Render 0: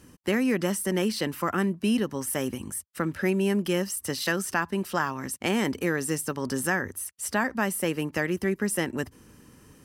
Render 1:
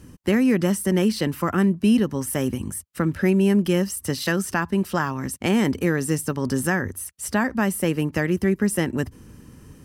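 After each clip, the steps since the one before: bass shelf 240 Hz +10.5 dB; trim +1.5 dB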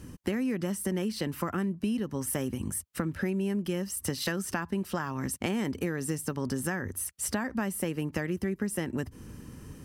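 compression 6:1, threshold -28 dBFS, peak gain reduction 13 dB

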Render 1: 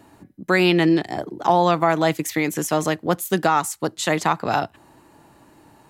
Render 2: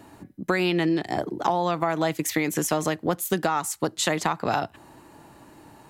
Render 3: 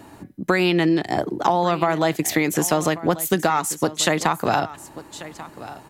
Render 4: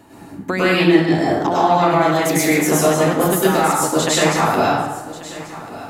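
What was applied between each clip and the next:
compression, threshold -22 dBFS, peak gain reduction 10 dB; trim +2 dB
delay 1139 ms -16.5 dB; trim +4.5 dB
plate-style reverb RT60 0.97 s, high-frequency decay 0.65×, pre-delay 90 ms, DRR -8 dB; trim -3.5 dB

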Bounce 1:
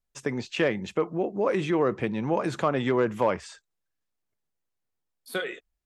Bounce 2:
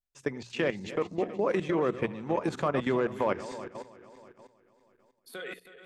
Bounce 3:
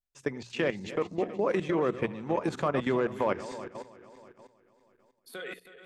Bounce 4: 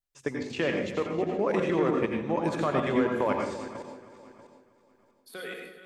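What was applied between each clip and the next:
backward echo that repeats 160 ms, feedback 70%, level -11.5 dB; level held to a coarse grid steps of 13 dB; hum notches 60/120/180 Hz
no audible change
reverberation RT60 0.45 s, pre-delay 81 ms, DRR 2 dB

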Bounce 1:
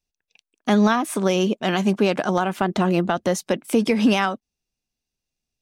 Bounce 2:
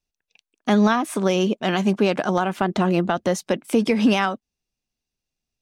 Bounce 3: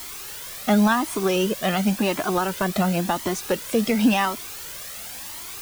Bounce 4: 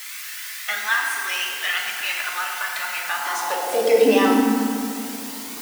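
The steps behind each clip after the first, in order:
treble shelf 9.1 kHz -5.5 dB
added noise white -35 dBFS; Shepard-style flanger rising 0.93 Hz; trim +3.5 dB
FDN reverb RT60 2.6 s, high-frequency decay 0.5×, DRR -2 dB; high-pass sweep 1.8 kHz -> 230 Hz, 3.03–4.53 s; trim -1.5 dB

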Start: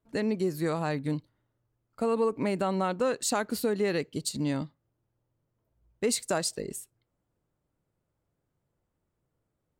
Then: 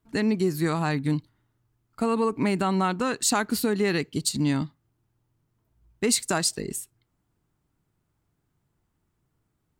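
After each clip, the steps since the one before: peaking EQ 540 Hz -11.5 dB 0.56 oct; trim +6.5 dB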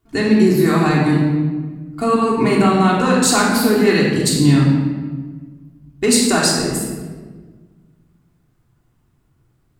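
simulated room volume 1400 m³, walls mixed, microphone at 3.3 m; trim +4 dB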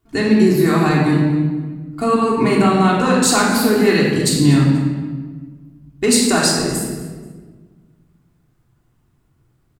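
feedback delay 241 ms, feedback 27%, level -18 dB

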